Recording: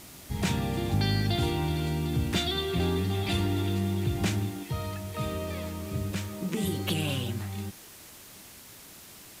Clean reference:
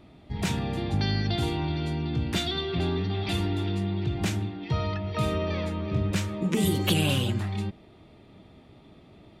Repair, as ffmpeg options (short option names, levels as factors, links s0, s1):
-af "afwtdn=0.004,asetnsamples=n=441:p=0,asendcmd='4.63 volume volume 5.5dB',volume=1"